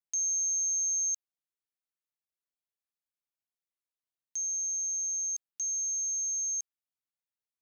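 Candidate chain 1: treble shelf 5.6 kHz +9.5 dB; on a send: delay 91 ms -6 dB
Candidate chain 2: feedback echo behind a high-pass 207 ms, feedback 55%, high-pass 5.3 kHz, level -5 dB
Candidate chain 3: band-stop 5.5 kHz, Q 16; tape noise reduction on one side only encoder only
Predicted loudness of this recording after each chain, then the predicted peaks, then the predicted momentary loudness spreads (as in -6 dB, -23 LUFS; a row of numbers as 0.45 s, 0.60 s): -28.5 LUFS, -33.0 LUFS, -29.0 LUFS; -21.0 dBFS, -26.5 dBFS, -17.0 dBFS; 6 LU, 16 LU, 7 LU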